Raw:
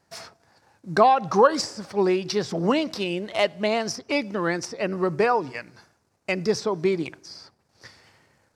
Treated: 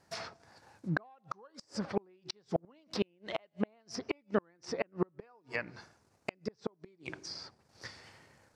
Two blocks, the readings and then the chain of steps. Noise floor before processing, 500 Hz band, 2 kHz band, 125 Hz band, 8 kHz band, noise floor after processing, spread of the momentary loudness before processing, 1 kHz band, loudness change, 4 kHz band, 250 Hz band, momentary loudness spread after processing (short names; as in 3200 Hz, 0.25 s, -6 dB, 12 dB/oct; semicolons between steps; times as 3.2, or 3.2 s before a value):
-69 dBFS, -16.0 dB, -12.0 dB, -9.5 dB, -15.0 dB, -71 dBFS, 16 LU, -21.5 dB, -16.0 dB, -13.0 dB, -12.5 dB, 14 LU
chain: flipped gate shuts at -17 dBFS, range -40 dB; treble ducked by the level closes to 2300 Hz, closed at -33 dBFS